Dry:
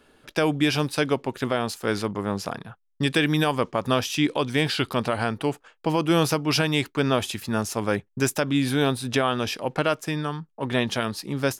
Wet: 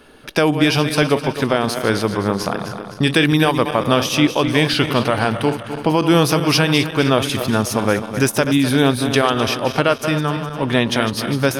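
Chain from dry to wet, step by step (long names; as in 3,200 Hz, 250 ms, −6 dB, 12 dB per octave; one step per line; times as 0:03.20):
feedback delay that plays each chunk backwards 128 ms, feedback 66%, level −10 dB
in parallel at +0.5 dB: downward compressor, threshold −31 dBFS, peak gain reduction 14.5 dB
on the sum: notch filter 7,400 Hz, Q 6.3
level +4.5 dB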